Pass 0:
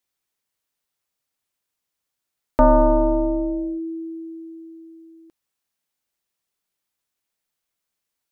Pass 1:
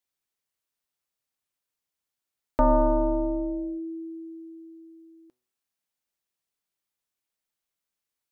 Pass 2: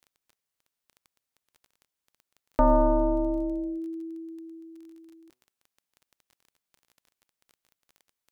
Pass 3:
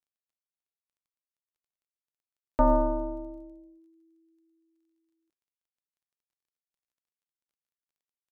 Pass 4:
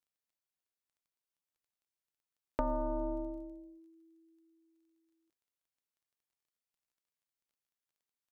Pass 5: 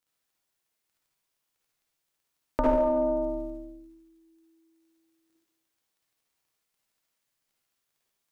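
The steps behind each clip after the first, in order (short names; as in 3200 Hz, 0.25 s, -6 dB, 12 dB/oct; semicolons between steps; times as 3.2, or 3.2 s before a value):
de-hum 124.4 Hz, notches 17; gain -5.5 dB
crackle 17/s -42 dBFS
upward expander 2.5:1, over -35 dBFS
compressor 8:1, threshold -31 dBFS, peak gain reduction 13 dB
reverb RT60 0.95 s, pre-delay 48 ms, DRR -4.5 dB; gain +6 dB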